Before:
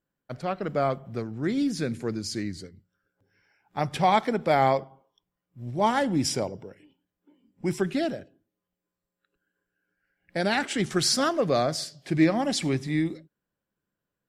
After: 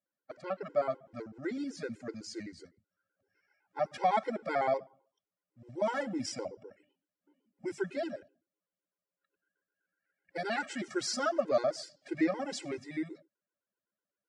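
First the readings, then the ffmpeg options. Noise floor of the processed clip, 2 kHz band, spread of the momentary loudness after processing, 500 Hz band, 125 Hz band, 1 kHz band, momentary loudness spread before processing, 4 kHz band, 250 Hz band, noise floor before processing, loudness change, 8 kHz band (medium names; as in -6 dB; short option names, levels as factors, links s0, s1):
under -85 dBFS, -7.5 dB, 14 LU, -6.0 dB, -19.0 dB, -8.5 dB, 13 LU, -12.0 dB, -10.5 dB, under -85 dBFS, -8.5 dB, -11.0 dB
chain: -af "highpass=140,equalizer=f=150:t=q:w=4:g=-10,equalizer=f=600:t=q:w=4:g=8,equalizer=f=1400:t=q:w=4:g=5,equalizer=f=2000:t=q:w=4:g=3,equalizer=f=3600:t=q:w=4:g=-5,lowpass=f=8400:w=0.5412,lowpass=f=8400:w=1.3066,afftfilt=real='re*gt(sin(2*PI*7.9*pts/sr)*(1-2*mod(floor(b*sr/1024/270),2)),0)':imag='im*gt(sin(2*PI*7.9*pts/sr)*(1-2*mod(floor(b*sr/1024/270),2)),0)':win_size=1024:overlap=0.75,volume=0.447"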